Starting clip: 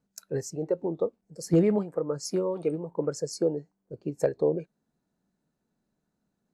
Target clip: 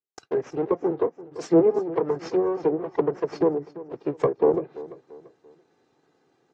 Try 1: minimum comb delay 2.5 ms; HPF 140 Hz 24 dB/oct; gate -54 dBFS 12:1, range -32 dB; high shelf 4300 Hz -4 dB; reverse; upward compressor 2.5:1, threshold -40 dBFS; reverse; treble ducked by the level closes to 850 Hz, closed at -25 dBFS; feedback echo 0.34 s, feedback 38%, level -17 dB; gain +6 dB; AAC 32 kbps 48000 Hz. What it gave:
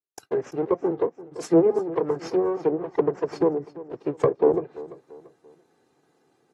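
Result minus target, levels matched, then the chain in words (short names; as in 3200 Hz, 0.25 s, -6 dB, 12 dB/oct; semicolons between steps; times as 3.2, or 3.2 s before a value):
8000 Hz band +3.5 dB
minimum comb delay 2.5 ms; HPF 140 Hz 24 dB/oct; gate -54 dBFS 12:1, range -32 dB; LPF 6700 Hz 24 dB/oct; high shelf 4300 Hz -4 dB; reverse; upward compressor 2.5:1, threshold -40 dBFS; reverse; treble ducked by the level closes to 850 Hz, closed at -25 dBFS; feedback echo 0.34 s, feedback 38%, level -17 dB; gain +6 dB; AAC 32 kbps 48000 Hz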